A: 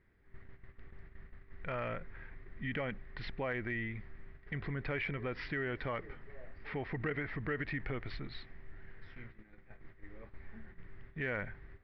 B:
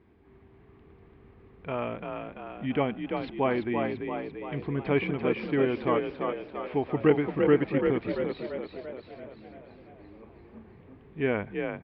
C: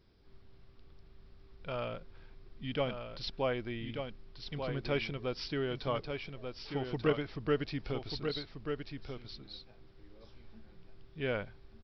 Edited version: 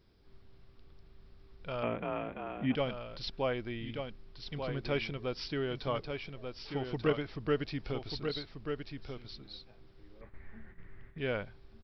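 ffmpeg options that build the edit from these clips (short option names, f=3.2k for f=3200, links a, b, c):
-filter_complex "[2:a]asplit=3[a][b][c];[a]atrim=end=1.832[d];[1:a]atrim=start=1.828:end=2.752[e];[b]atrim=start=2.748:end=10.212[f];[0:a]atrim=start=10.208:end=11.182[g];[c]atrim=start=11.178[h];[d][e]acrossfade=d=0.004:c1=hsin:c2=hsin[i];[i][f]acrossfade=d=0.004:c1=hsin:c2=hsin[j];[j][g]acrossfade=d=0.004:c1=hsin:c2=hsin[k];[k][h]acrossfade=d=0.004:c1=hsin:c2=hsin"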